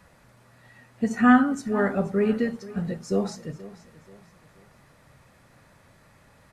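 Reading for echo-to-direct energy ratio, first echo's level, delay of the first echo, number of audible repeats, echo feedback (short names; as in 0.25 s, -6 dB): -17.5 dB, -18.0 dB, 0.481 s, 3, 38%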